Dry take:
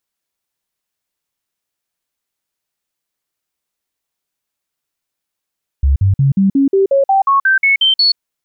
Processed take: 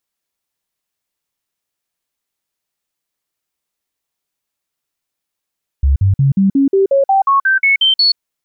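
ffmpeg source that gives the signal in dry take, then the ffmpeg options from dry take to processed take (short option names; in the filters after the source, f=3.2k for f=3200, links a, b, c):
-f lavfi -i "aevalsrc='0.398*clip(min(mod(t,0.18),0.13-mod(t,0.18))/0.005,0,1)*sin(2*PI*68.8*pow(2,floor(t/0.18)/2)*mod(t,0.18))':d=2.34:s=44100"
-af "bandreject=f=1.5k:w=28"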